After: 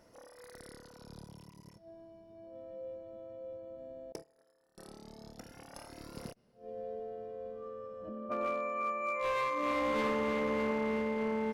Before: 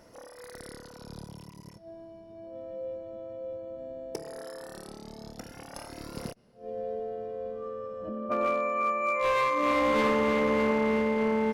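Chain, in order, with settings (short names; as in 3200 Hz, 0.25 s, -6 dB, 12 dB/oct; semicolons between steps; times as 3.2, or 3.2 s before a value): 4.12–4.78 gate -37 dBFS, range -24 dB; gain -7 dB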